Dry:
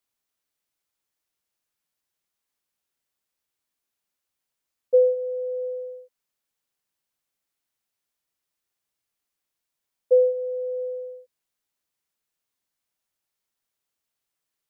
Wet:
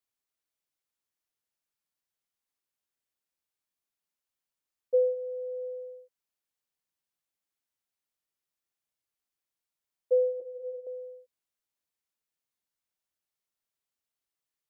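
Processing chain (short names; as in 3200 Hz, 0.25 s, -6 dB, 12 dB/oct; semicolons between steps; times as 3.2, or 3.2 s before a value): 10.4–10.87 ensemble effect; gain -7 dB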